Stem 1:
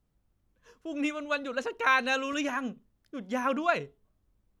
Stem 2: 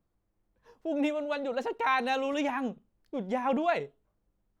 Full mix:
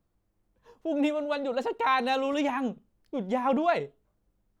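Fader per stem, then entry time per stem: −14.5, +2.0 decibels; 0.00, 0.00 seconds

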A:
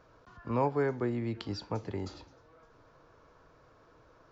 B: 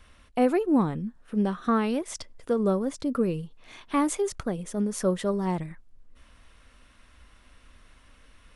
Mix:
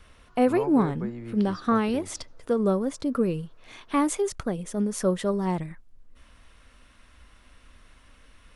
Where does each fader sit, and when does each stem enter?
−4.5, +1.0 decibels; 0.00, 0.00 seconds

